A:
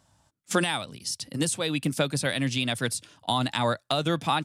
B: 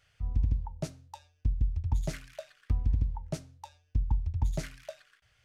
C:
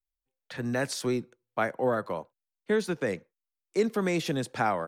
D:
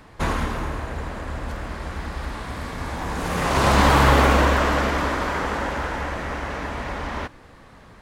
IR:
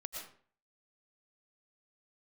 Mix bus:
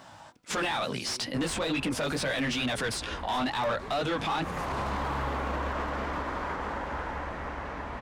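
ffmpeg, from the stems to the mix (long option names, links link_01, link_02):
-filter_complex "[0:a]flanger=delay=15:depth=5.2:speed=2.2,asplit=2[link_01][link_02];[link_02]highpass=frequency=720:poles=1,volume=28dB,asoftclip=type=tanh:threshold=-10.5dB[link_03];[link_01][link_03]amix=inputs=2:normalize=0,lowpass=frequency=2700:poles=1,volume=-6dB,volume=3dB,asplit=2[link_04][link_05];[1:a]acompressor=threshold=-33dB:ratio=3,highpass=320,aemphasis=mode=production:type=bsi,volume=-6.5dB[link_06];[2:a]adelay=50,volume=-6dB[link_07];[3:a]asoftclip=type=hard:threshold=-7.5dB,equalizer=frequency=960:width=1.5:gain=3.5,dynaudnorm=framelen=570:gausssize=7:maxgain=11.5dB,adelay=1150,volume=-12.5dB[link_08];[link_05]apad=whole_len=217079[link_09];[link_07][link_09]sidechaincompress=threshold=-27dB:ratio=8:attack=16:release=390[link_10];[link_06][link_10]amix=inputs=2:normalize=0,acompressor=threshold=-43dB:ratio=6,volume=0dB[link_11];[link_04][link_08]amix=inputs=2:normalize=0,aemphasis=mode=reproduction:type=cd,alimiter=limit=-19.5dB:level=0:latency=1:release=28,volume=0dB[link_12];[link_11][link_12]amix=inputs=2:normalize=0,alimiter=limit=-23.5dB:level=0:latency=1:release=93"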